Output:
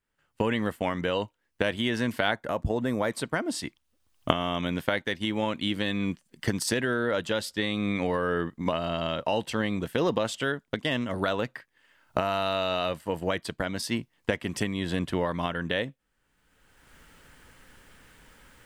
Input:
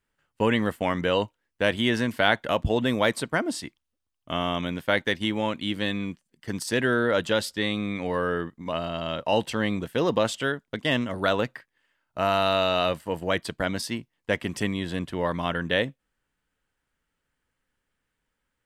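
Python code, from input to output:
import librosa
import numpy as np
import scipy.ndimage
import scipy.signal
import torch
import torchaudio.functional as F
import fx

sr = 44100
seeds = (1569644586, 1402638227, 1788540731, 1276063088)

y = fx.recorder_agc(x, sr, target_db=-11.5, rise_db_per_s=26.0, max_gain_db=30)
y = fx.peak_eq(y, sr, hz=3100.0, db=-12.0, octaves=0.84, at=(2.31, 3.11))
y = F.gain(torch.from_numpy(y), -5.0).numpy()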